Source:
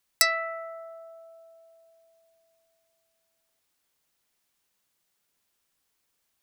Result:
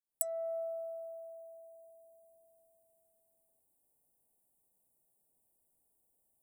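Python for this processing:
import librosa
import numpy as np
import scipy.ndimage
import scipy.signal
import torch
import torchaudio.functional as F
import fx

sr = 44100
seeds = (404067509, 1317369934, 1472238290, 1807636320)

y = fx.fade_in_head(x, sr, length_s=0.59)
y = scipy.signal.sosfilt(scipy.signal.ellip(3, 1.0, 40, [770.0, 8800.0], 'bandstop', fs=sr, output='sos'), y)
y = fx.hum_notches(y, sr, base_hz=60, count=3)
y = F.gain(torch.from_numpy(y), 1.5).numpy()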